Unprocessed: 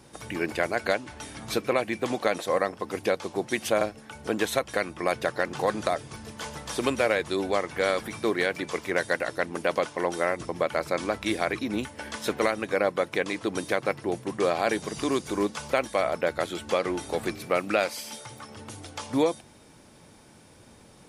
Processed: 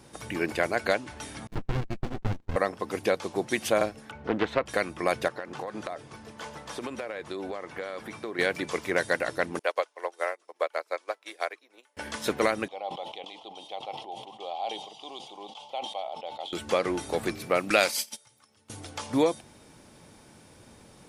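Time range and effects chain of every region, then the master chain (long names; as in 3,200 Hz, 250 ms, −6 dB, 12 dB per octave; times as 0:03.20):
0:01.47–0:02.56: noise gate −31 dBFS, range −30 dB + high-frequency loss of the air 96 metres + windowed peak hold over 65 samples
0:04.11–0:04.66: low-pass filter 2,400 Hz + highs frequency-modulated by the lows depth 0.31 ms
0:05.28–0:08.39: high-pass filter 760 Hz 6 dB per octave + spectral tilt −3 dB per octave + downward compressor 12 to 1, threshold −30 dBFS
0:09.59–0:11.97: high-pass filter 440 Hz 24 dB per octave + expander for the loud parts 2.5 to 1, over −39 dBFS
0:12.68–0:16.53: pair of resonant band-passes 1,600 Hz, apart 2 octaves + level that may fall only so fast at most 64 dB per second
0:17.70–0:18.70: noise gate −38 dBFS, range −24 dB + high-shelf EQ 2,400 Hz +11 dB
whole clip: no processing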